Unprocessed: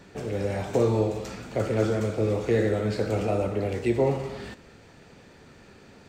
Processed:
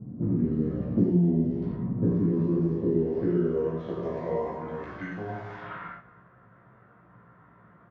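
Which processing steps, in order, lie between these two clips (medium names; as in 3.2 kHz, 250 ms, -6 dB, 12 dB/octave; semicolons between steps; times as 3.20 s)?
level-controlled noise filter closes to 760 Hz, open at -22.5 dBFS; resonant low shelf 310 Hz +7 dB, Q 3; compression 2.5:1, threshold -29 dBFS, peak gain reduction 10.5 dB; band-pass sweep 330 Hz -> 2 kHz, 1.64–4.59 s; wide varispeed 0.77×; doubling 17 ms -3.5 dB; gated-style reverb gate 130 ms flat, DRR -1.5 dB; trim +9 dB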